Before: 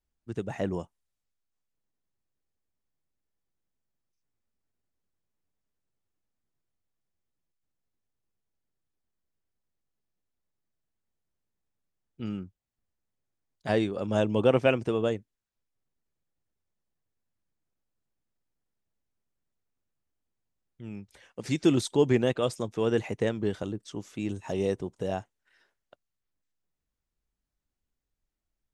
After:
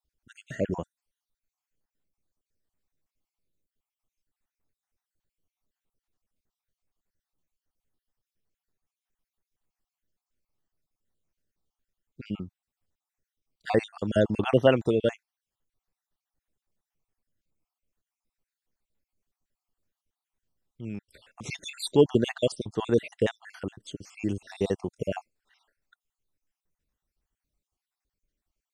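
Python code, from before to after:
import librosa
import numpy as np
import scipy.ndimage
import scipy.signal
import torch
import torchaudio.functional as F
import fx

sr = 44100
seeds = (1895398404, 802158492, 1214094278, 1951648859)

y = fx.spec_dropout(x, sr, seeds[0], share_pct=53)
y = y * 10.0 ** (4.0 / 20.0)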